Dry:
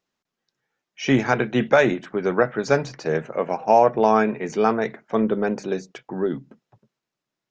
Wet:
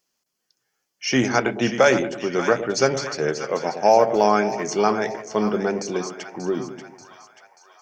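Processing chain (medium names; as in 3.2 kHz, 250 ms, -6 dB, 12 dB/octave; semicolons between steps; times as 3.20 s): tone controls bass -4 dB, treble +14 dB; band-stop 3.9 kHz, Q 7.2; two-band feedback delay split 820 Hz, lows 104 ms, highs 562 ms, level -10 dB; speed mistake 25 fps video run at 24 fps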